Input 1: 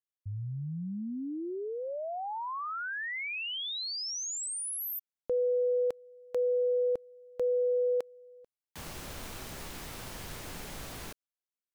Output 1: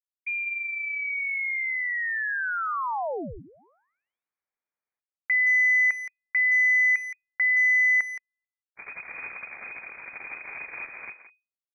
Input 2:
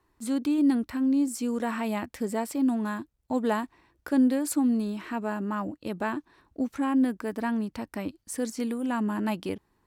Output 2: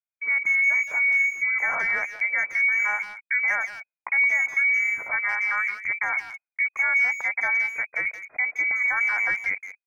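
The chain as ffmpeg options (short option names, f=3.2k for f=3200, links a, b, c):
-filter_complex "[0:a]agate=range=-44dB:threshold=-46dB:ratio=16:release=20:detection=peak,adynamicequalizer=threshold=0.00562:dfrequency=140:dqfactor=1.5:tfrequency=140:tqfactor=1.5:attack=5:release=100:ratio=0.375:range=3:mode=cutabove:tftype=bell,acompressor=threshold=-27dB:ratio=3:attack=0.93:release=93:knee=1:detection=peak,lowpass=f=2.1k:t=q:w=0.5098,lowpass=f=2.1k:t=q:w=0.6013,lowpass=f=2.1k:t=q:w=0.9,lowpass=f=2.1k:t=q:w=2.563,afreqshift=-2500,asplit=2[a][b];[b]adelay=170,highpass=300,lowpass=3.4k,asoftclip=type=hard:threshold=-29dB,volume=-11dB[c];[a][c]amix=inputs=2:normalize=0,volume=7.5dB"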